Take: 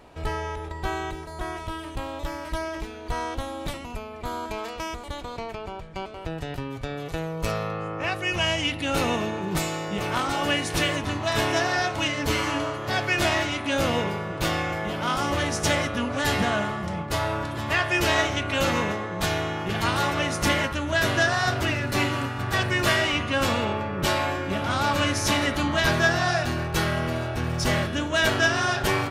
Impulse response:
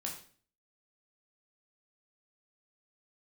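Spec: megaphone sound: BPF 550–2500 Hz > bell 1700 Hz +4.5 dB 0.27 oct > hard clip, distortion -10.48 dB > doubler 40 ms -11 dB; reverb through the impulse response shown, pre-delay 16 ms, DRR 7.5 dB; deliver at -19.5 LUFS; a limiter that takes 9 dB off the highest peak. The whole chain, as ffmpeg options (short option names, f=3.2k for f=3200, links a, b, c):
-filter_complex "[0:a]alimiter=limit=-17dB:level=0:latency=1,asplit=2[a][b];[1:a]atrim=start_sample=2205,adelay=16[c];[b][c]afir=irnorm=-1:irlink=0,volume=-7.5dB[d];[a][d]amix=inputs=2:normalize=0,highpass=550,lowpass=2.5k,equalizer=f=1.7k:t=o:w=0.27:g=4.5,asoftclip=type=hard:threshold=-27.5dB,asplit=2[e][f];[f]adelay=40,volume=-11dB[g];[e][g]amix=inputs=2:normalize=0,volume=12dB"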